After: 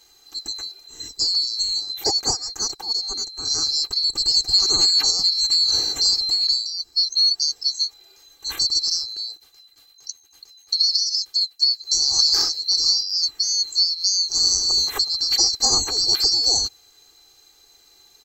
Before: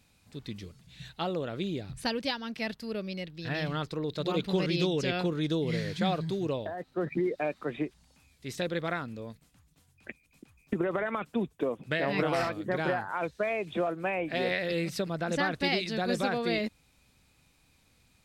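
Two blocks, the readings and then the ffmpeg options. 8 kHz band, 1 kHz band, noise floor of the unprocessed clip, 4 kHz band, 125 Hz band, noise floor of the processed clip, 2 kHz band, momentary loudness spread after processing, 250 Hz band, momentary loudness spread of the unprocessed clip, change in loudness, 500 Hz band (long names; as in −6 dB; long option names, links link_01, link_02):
+29.0 dB, −2.5 dB, −67 dBFS, +23.5 dB, below −10 dB, −55 dBFS, can't be measured, 13 LU, below −10 dB, 14 LU, +13.5 dB, −10.0 dB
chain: -af "afftfilt=real='real(if(lt(b,736),b+184*(1-2*mod(floor(b/184),2)),b),0)':imag='imag(if(lt(b,736),b+184*(1-2*mod(floor(b/184),2)),b),0)':win_size=2048:overlap=0.75,aecho=1:1:2.5:0.64,volume=9dB"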